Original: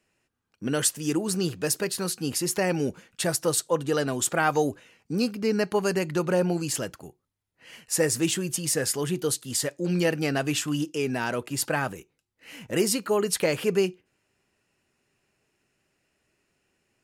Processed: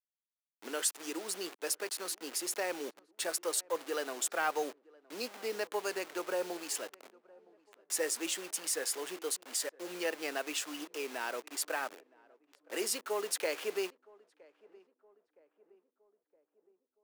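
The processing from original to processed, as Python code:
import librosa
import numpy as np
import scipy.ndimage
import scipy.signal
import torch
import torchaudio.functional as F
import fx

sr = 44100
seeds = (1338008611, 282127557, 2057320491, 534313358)

p1 = fx.delta_hold(x, sr, step_db=-33.0)
p2 = scipy.signal.sosfilt(scipy.signal.bessel(6, 500.0, 'highpass', norm='mag', fs=sr, output='sos'), p1)
p3 = 10.0 ** (-23.0 / 20.0) * np.tanh(p2 / 10.0 ** (-23.0 / 20.0))
p4 = p2 + F.gain(torch.from_numpy(p3), -9.0).numpy()
p5 = fx.echo_filtered(p4, sr, ms=966, feedback_pct=55, hz=1100.0, wet_db=-23.5)
y = F.gain(torch.from_numpy(p5), -9.0).numpy()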